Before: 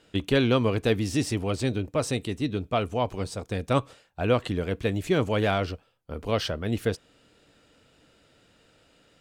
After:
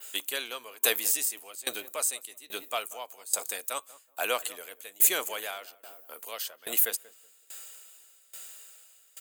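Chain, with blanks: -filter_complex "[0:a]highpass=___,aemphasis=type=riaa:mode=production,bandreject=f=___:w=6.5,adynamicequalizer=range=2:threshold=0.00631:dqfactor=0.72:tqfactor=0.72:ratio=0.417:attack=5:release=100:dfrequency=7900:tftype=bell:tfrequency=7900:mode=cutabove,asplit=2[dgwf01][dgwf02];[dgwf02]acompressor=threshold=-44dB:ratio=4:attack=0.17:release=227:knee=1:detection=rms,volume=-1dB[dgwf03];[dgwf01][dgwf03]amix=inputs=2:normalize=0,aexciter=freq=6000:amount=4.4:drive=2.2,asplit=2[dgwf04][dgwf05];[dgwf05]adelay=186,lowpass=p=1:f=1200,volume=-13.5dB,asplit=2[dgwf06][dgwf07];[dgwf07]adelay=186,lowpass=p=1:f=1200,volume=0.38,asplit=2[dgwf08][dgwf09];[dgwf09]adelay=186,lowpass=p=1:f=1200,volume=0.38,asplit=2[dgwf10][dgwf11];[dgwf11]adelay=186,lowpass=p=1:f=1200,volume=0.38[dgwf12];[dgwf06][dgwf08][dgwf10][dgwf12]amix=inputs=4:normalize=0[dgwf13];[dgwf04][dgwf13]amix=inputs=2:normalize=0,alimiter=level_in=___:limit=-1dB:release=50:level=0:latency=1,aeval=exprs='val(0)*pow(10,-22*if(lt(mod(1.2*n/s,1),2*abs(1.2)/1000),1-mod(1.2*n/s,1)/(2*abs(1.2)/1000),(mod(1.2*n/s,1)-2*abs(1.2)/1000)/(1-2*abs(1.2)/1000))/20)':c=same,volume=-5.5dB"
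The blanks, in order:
630, 5600, 8dB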